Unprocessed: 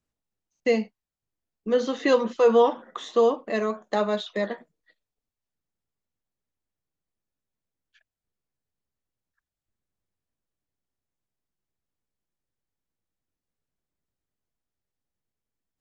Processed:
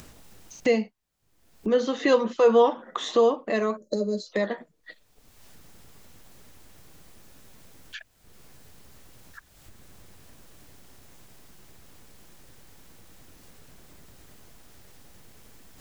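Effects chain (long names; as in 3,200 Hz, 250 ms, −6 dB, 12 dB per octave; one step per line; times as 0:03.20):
gain on a spectral selection 0:03.77–0:04.32, 610–4,000 Hz −28 dB
upward compression, threshold −21 dBFS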